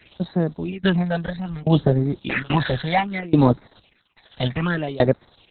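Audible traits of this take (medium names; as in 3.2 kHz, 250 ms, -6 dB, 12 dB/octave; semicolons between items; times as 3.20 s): a quantiser's noise floor 8-bit, dither triangular; tremolo saw down 1.2 Hz, depth 95%; phasing stages 8, 0.63 Hz, lowest notch 310–2900 Hz; Opus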